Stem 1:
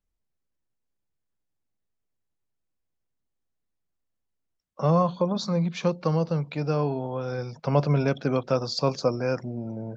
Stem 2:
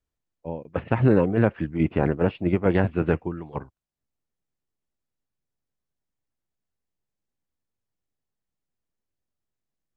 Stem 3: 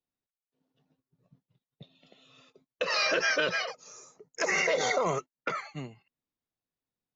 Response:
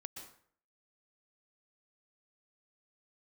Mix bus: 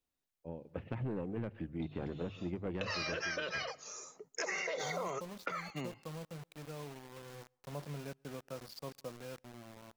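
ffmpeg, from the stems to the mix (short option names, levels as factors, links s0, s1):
-filter_complex "[0:a]acrusher=bits=4:mix=0:aa=0.000001,volume=0.211,afade=t=out:st=5.16:d=0.2:silence=0.398107,asplit=2[s0][s1];[s1]volume=0.0631[s2];[1:a]equalizer=f=1200:t=o:w=1.8:g=-6,bandreject=f=50:t=h:w=6,bandreject=f=100:t=h:w=6,bandreject=f=150:t=h:w=6,asoftclip=type=tanh:threshold=0.178,volume=0.282,asplit=2[s3][s4];[s4]volume=0.178[s5];[2:a]lowshelf=f=130:g=-11.5,volume=1.26,asplit=2[s6][s7];[s7]volume=0.0708[s8];[s0][s6]amix=inputs=2:normalize=0,alimiter=limit=0.0891:level=0:latency=1:release=450,volume=1[s9];[3:a]atrim=start_sample=2205[s10];[s2][s5][s8]amix=inputs=3:normalize=0[s11];[s11][s10]afir=irnorm=-1:irlink=0[s12];[s3][s9][s12]amix=inputs=3:normalize=0,acompressor=threshold=0.0178:ratio=6"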